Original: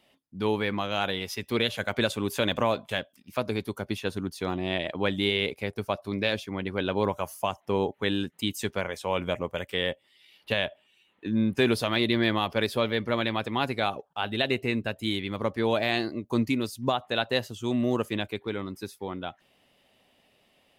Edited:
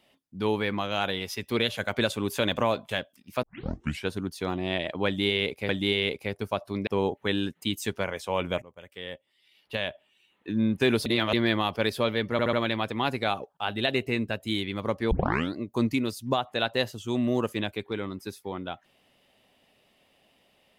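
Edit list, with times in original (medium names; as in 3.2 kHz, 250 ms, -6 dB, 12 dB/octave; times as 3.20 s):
3.43 s: tape start 0.66 s
5.06–5.69 s: loop, 2 plays
6.24–7.64 s: delete
9.39–11.27 s: fade in, from -21 dB
11.83–12.10 s: reverse
13.09 s: stutter 0.07 s, 4 plays
15.67 s: tape start 0.44 s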